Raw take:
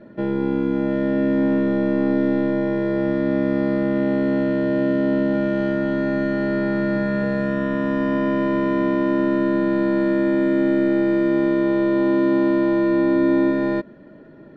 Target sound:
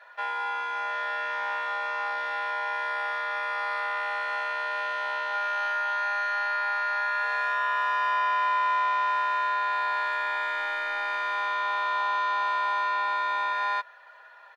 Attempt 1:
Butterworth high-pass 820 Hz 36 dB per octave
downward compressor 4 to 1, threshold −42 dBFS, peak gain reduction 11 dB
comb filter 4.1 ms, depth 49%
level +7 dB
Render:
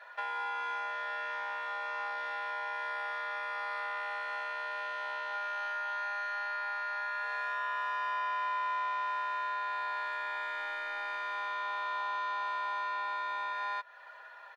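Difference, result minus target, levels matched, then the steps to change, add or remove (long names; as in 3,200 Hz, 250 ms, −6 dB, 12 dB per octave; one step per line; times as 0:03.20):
downward compressor: peak gain reduction +8.5 dB
change: downward compressor 4 to 1, threshold −30.5 dBFS, peak gain reduction 2.5 dB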